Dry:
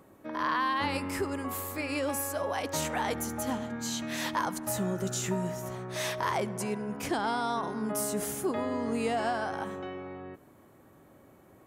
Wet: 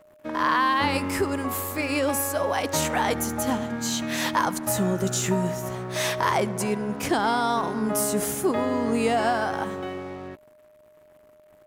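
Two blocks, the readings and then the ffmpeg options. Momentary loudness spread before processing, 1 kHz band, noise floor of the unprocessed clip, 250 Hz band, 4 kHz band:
7 LU, +7.0 dB, -58 dBFS, +7.0 dB, +7.0 dB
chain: -af "aeval=exprs='sgn(val(0))*max(abs(val(0))-0.002,0)':c=same,aeval=exprs='val(0)+0.001*sin(2*PI*610*n/s)':c=same,volume=7.5dB"

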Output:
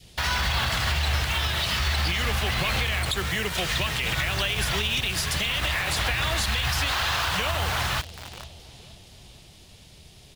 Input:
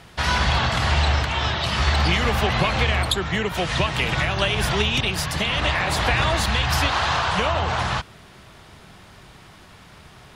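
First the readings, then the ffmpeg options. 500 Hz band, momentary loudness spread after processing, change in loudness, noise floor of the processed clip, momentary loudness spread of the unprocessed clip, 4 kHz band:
-8.0 dB, 2 LU, -3.5 dB, -50 dBFS, 4 LU, -1.5 dB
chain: -filter_complex "[0:a]equalizer=f=250:w=0.38:g=-8,aecho=1:1:468|936|1404|1872|2340:0.158|0.0824|0.0429|0.0223|0.0116,acrossover=split=660|2600[a][b][c];[b]acrusher=bits=5:mix=0:aa=0.000001[d];[a][d][c]amix=inputs=3:normalize=0,adynamicequalizer=threshold=0.0112:dfrequency=910:dqfactor=1.1:tfrequency=910:tqfactor=1.1:attack=5:release=100:ratio=0.375:range=2.5:mode=cutabove:tftype=bell,alimiter=limit=-17.5dB:level=0:latency=1:release=64,volume=2dB"

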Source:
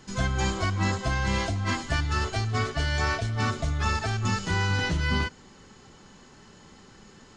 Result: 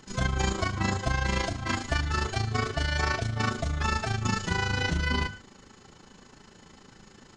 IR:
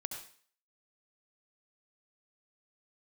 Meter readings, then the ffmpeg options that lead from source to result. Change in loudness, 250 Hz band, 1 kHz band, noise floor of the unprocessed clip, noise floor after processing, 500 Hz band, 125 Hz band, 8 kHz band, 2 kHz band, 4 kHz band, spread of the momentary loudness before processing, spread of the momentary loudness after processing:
-1.5 dB, -1.5 dB, -1.0 dB, -52 dBFS, -55 dBFS, -0.5 dB, -2.5 dB, -0.5 dB, -0.5 dB, -0.5 dB, 2 LU, 2 LU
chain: -filter_complex "[0:a]tremolo=f=27:d=0.71,bandreject=f=50:t=h:w=6,bandreject=f=100:t=h:w=6,bandreject=f=150:t=h:w=6,bandreject=f=200:t=h:w=6,asplit=2[a][b];[1:a]atrim=start_sample=2205,atrim=end_sample=6174[c];[b][c]afir=irnorm=-1:irlink=0,volume=-7.5dB[d];[a][d]amix=inputs=2:normalize=0"

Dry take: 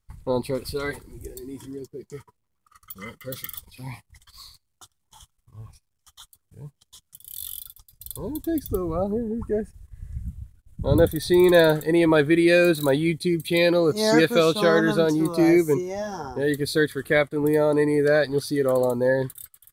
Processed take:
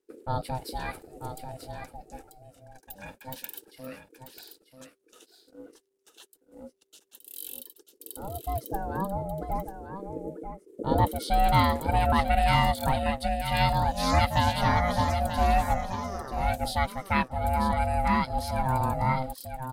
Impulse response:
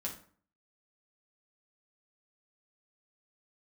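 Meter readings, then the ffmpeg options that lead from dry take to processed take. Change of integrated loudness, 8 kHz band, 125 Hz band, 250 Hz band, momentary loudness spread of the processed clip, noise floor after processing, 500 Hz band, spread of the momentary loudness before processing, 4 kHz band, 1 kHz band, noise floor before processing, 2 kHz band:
-5.5 dB, -5.0 dB, 0.0 dB, -10.5 dB, 19 LU, -69 dBFS, -12.5 dB, 20 LU, -4.0 dB, +7.5 dB, -74 dBFS, -6.5 dB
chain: -af "aecho=1:1:939:0.355,aeval=exprs='val(0)*sin(2*PI*390*n/s)':c=same,volume=-2.5dB"

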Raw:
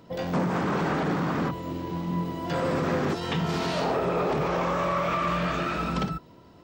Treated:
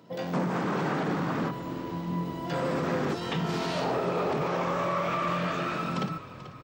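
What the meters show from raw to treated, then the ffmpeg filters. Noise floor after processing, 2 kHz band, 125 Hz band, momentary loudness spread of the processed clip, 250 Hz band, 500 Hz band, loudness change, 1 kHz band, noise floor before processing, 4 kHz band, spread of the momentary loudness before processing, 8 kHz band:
-44 dBFS, -2.5 dB, -3.0 dB, 5 LU, -2.5 dB, -2.5 dB, -2.5 dB, -2.5 dB, -52 dBFS, -2.5 dB, 5 LU, -2.5 dB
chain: -filter_complex "[0:a]highpass=f=120:w=0.5412,highpass=f=120:w=1.3066,asplit=5[a][b][c][d][e];[b]adelay=437,afreqshift=-39,volume=-14dB[f];[c]adelay=874,afreqshift=-78,volume=-21.1dB[g];[d]adelay=1311,afreqshift=-117,volume=-28.3dB[h];[e]adelay=1748,afreqshift=-156,volume=-35.4dB[i];[a][f][g][h][i]amix=inputs=5:normalize=0,volume=-2.5dB"

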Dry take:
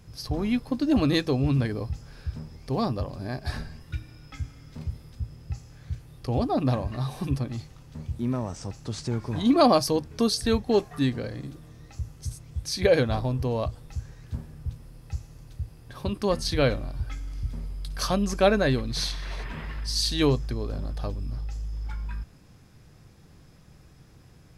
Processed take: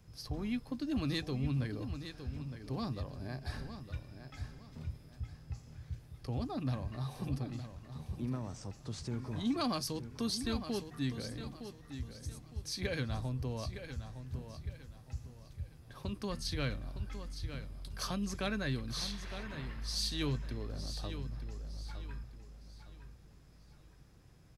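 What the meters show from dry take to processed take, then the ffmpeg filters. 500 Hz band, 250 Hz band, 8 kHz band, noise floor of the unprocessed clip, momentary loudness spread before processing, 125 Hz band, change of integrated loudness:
-17.5 dB, -11.5 dB, -9.0 dB, -53 dBFS, 17 LU, -9.0 dB, -12.5 dB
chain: -filter_complex "[0:a]acrossover=split=290|1100|4600[a][b][c][d];[b]acompressor=threshold=-36dB:ratio=6[e];[a][e][c][d]amix=inputs=4:normalize=0,asoftclip=type=tanh:threshold=-13dB,aecho=1:1:911|1822|2733|3644:0.316|0.101|0.0324|0.0104,volume=-9dB"

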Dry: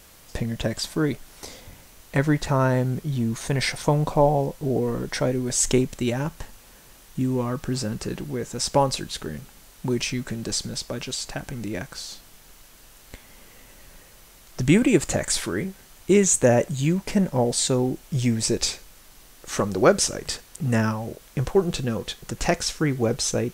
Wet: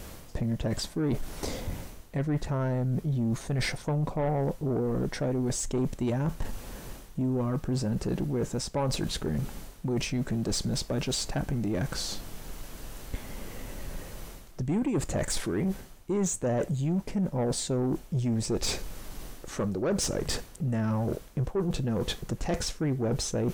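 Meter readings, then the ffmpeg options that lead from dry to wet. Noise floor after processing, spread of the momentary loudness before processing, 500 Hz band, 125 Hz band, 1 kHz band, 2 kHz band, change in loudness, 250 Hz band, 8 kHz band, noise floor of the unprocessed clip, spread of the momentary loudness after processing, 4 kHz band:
-48 dBFS, 13 LU, -7.5 dB, -3.5 dB, -9.5 dB, -9.5 dB, -6.5 dB, -5.0 dB, -8.5 dB, -51 dBFS, 13 LU, -6.0 dB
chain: -af "tiltshelf=f=850:g=5.5,areverse,acompressor=threshold=-32dB:ratio=5,areverse,asoftclip=type=tanh:threshold=-29.5dB,volume=7.5dB"

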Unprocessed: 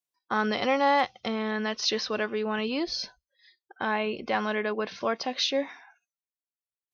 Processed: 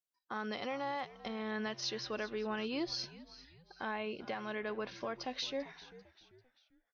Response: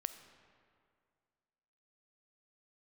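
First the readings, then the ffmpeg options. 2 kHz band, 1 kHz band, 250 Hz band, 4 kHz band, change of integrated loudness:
-11.5 dB, -13.0 dB, -10.0 dB, -10.5 dB, -11.5 dB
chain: -filter_complex "[0:a]alimiter=limit=-22dB:level=0:latency=1:release=440,asplit=2[a][b];[b]asplit=3[c][d][e];[c]adelay=393,afreqshift=-86,volume=-17dB[f];[d]adelay=786,afreqshift=-172,volume=-24.7dB[g];[e]adelay=1179,afreqshift=-258,volume=-32.5dB[h];[f][g][h]amix=inputs=3:normalize=0[i];[a][i]amix=inputs=2:normalize=0,volume=-6.5dB"

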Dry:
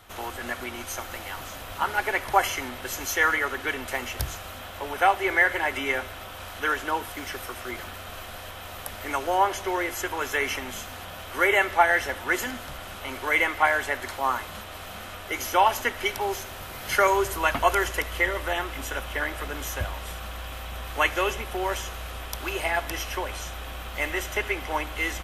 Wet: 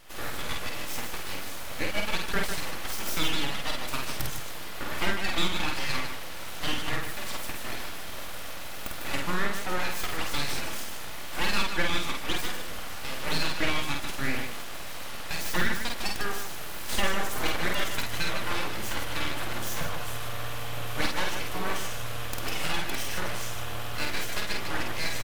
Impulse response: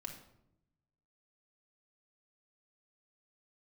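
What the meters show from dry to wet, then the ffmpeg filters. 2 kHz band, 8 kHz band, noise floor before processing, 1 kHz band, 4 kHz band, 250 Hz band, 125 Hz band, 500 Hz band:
-6.0 dB, -0.5 dB, -40 dBFS, -9.0 dB, +3.0 dB, 0.0 dB, +1.0 dB, -8.0 dB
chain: -af "aecho=1:1:3.5:0.44,acompressor=threshold=-27dB:ratio=2,aeval=exprs='abs(val(0))':c=same,aecho=1:1:49.56|151.6:0.708|0.447"

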